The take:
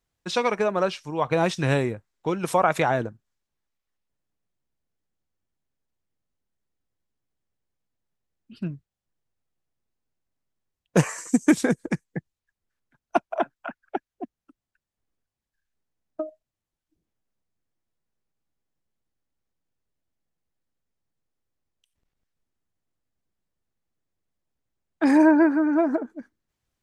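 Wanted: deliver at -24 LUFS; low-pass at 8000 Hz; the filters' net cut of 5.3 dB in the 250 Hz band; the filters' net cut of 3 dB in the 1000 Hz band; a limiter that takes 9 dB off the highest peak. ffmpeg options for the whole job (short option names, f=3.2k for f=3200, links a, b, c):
-af "lowpass=8k,equalizer=f=250:t=o:g=-7,equalizer=f=1k:t=o:g=-3.5,volume=6dB,alimiter=limit=-10.5dB:level=0:latency=1"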